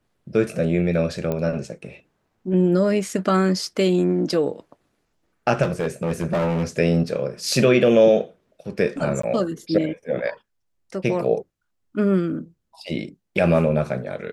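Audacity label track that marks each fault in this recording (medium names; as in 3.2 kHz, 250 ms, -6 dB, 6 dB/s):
1.320000	1.320000	pop -14 dBFS
5.620000	6.640000	clipped -18 dBFS
9.220000	9.230000	dropout 14 ms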